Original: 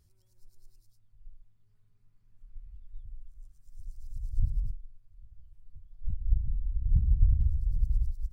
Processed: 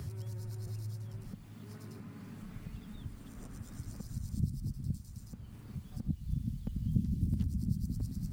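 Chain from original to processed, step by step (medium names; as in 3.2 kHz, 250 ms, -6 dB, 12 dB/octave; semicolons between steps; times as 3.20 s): chunks repeated in reverse 667 ms, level -7 dB; high-pass sweep 110 Hz -> 220 Hz, 0.85–1.49 s; three bands compressed up and down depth 70%; trim +14 dB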